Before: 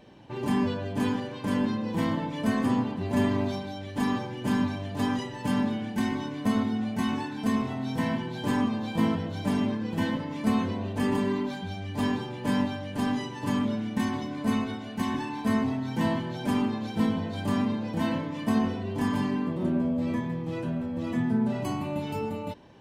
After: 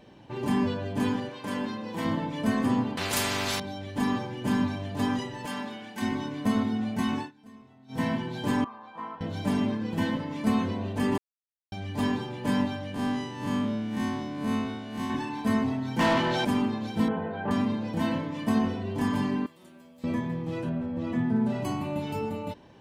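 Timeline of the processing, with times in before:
1.30–2.05 s: bass shelf 260 Hz -11.5 dB
2.97–3.60 s: spectrum-flattening compressor 4:1
5.45–6.02 s: high-pass 830 Hz 6 dB/octave
7.19–8.01 s: dip -23.5 dB, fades 0.13 s
8.64–9.21 s: band-pass filter 1.1 kHz, Q 3.1
11.18–11.72 s: mute
12.94–15.10 s: spectral blur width 102 ms
15.99–16.45 s: overdrive pedal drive 23 dB, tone 3.9 kHz, clips at -16 dBFS
17.08–17.51 s: cabinet simulation 110–2500 Hz, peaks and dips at 110 Hz -9 dB, 280 Hz -8 dB, 440 Hz +8 dB, 810 Hz +7 dB, 1.5 kHz +7 dB, 2.2 kHz -4 dB
19.46–20.04 s: pre-emphasis filter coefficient 0.97
20.69–21.36 s: low-pass 3.2 kHz 6 dB/octave

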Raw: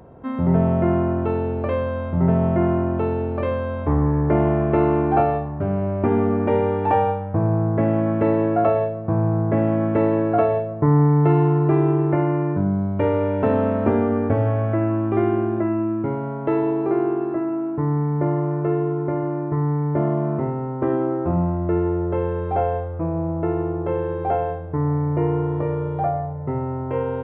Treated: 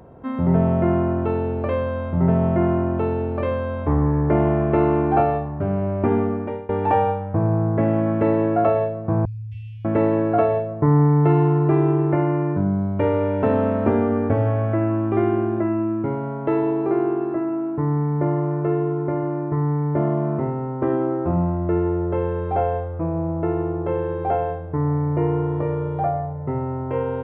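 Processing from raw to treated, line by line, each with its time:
6.12–6.69 s: fade out, to -23.5 dB
9.25–9.85 s: Chebyshev band-stop 100–2700 Hz, order 5

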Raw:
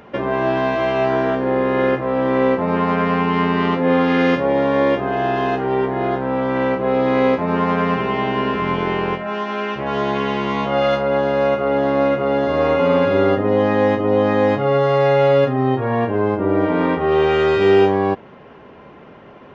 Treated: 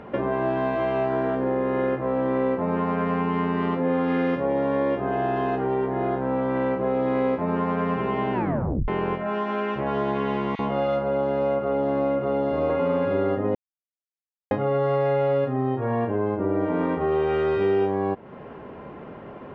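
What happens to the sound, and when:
8.33 s: tape stop 0.55 s
10.55–12.70 s: bands offset in time highs, lows 40 ms, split 1.7 kHz
13.55–14.51 s: mute
whole clip: low-pass 1.3 kHz 6 dB/octave; compression 2.5:1, threshold -28 dBFS; trim +3 dB

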